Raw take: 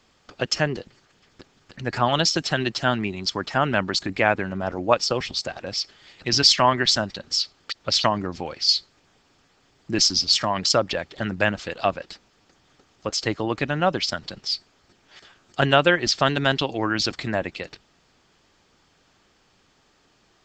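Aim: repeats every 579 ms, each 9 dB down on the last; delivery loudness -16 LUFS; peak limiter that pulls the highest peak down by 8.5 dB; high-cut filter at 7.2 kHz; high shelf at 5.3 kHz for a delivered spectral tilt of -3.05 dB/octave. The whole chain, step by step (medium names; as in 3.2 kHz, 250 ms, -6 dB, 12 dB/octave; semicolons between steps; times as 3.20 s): low-pass 7.2 kHz; treble shelf 5.3 kHz +5 dB; peak limiter -8.5 dBFS; feedback delay 579 ms, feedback 35%, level -9 dB; trim +7 dB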